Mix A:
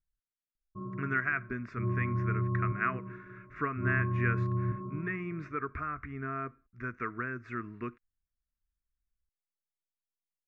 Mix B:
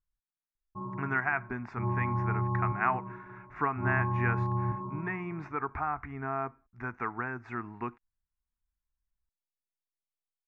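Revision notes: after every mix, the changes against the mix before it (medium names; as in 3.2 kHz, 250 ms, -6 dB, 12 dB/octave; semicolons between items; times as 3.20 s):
master: remove Butterworth band-stop 830 Hz, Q 1.4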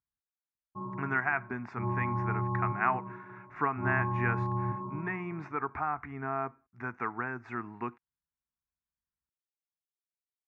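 master: add high-pass 110 Hz 12 dB/octave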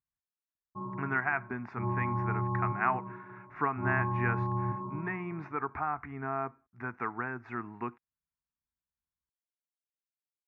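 speech: add distance through air 110 m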